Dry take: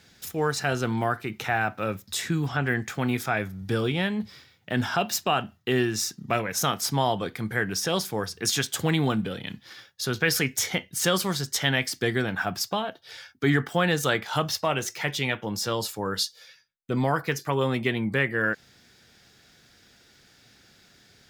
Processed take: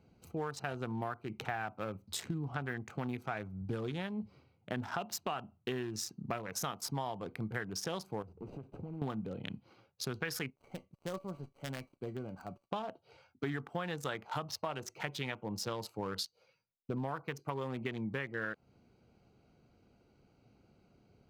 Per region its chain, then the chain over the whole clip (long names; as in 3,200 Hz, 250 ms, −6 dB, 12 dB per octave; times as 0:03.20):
0:08.22–0:09.02: running median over 41 samples + dynamic equaliser 2,300 Hz, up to +4 dB, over −49 dBFS, Q 1.2 + downward compressor 8 to 1, threshold −36 dBFS
0:10.50–0:12.72: gap after every zero crossing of 0.11 ms + tuned comb filter 570 Hz, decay 0.2 s, mix 70%
whole clip: adaptive Wiener filter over 25 samples; dynamic equaliser 1,000 Hz, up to +5 dB, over −39 dBFS, Q 1.4; downward compressor 6 to 1, threshold −31 dBFS; level −3.5 dB